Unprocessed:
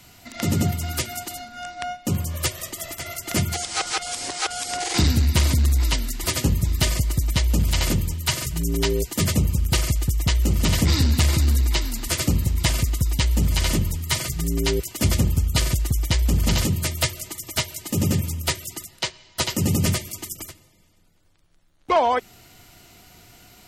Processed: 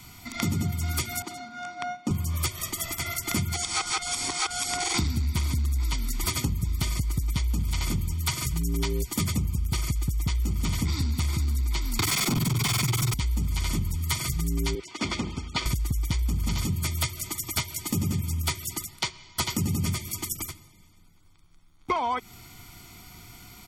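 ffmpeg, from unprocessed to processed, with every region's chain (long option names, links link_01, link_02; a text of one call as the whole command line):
ffmpeg -i in.wav -filter_complex "[0:a]asettb=1/sr,asplit=3[link_01][link_02][link_03];[link_01]atrim=end=1.224[link_04];[link_02]atrim=start=1.22:end=2.11,asetpts=PTS-STARTPTS,afade=type=in:duration=0.004:curve=qsin,afade=type=out:start_time=0.886:duration=0.004:curve=qsin,highpass=180,lowpass=6800,adynamicequalizer=threshold=0.00501:dfrequency=1500:dqfactor=0.7:tfrequency=1500:tqfactor=0.7:attack=5:release=100:ratio=0.375:range=3.5:mode=cutabove:tftype=highshelf[link_05];[link_03]atrim=start=2.106[link_06];[link_04][link_05]acrossfade=duration=0.004:curve1=hsin:curve2=qsin[link_07];[link_07][link_06]acrossfade=duration=0.004:curve1=qsin:curve2=hsin,asettb=1/sr,asplit=3[link_08][link_09][link_10];[link_08]atrim=end=11.994[link_11];[link_09]atrim=start=11.99:end=13.14,asetpts=PTS-STARTPTS,afade=type=in:duration=0.004:curve=qsin,afade=type=out:start_time=1.146:duration=0.004:curve=qsin,tremolo=f=21:d=0.974,afreqshift=64,asplit=2[link_12][link_13];[link_13]highpass=frequency=720:poles=1,volume=39dB,asoftclip=type=tanh:threshold=-6.5dB[link_14];[link_12][link_14]amix=inputs=2:normalize=0,lowpass=frequency=7000:poles=1,volume=-6dB[link_15];[link_10]atrim=start=13.136[link_16];[link_11][link_15]acrossfade=duration=0.004:curve1=hsin:curve2=qsin[link_17];[link_17][link_16]acrossfade=duration=0.004:curve1=qsin:curve2=hsin,asettb=1/sr,asplit=3[link_18][link_19][link_20];[link_18]atrim=end=14.754[link_21];[link_19]atrim=start=14.75:end=15.66,asetpts=PTS-STARTPTS,afade=type=in:duration=0.004:curve=qsin,afade=type=out:start_time=0.906:duration=0.004:curve=qsin,lowpass=frequency=9000:width=0.5412,lowpass=frequency=9000:width=1.3066,acrossover=split=250 5100:gain=0.0891 1 0.112[link_22][link_23][link_24];[link_22][link_23][link_24]amix=inputs=3:normalize=0[link_25];[link_20]atrim=start=15.656[link_26];[link_21][link_25]acrossfade=duration=0.004:curve1=hsin:curve2=qsin[link_27];[link_27][link_26]acrossfade=duration=0.004:curve1=qsin:curve2=hsin,aecho=1:1:0.9:0.67,acompressor=threshold=-24dB:ratio=6" out.wav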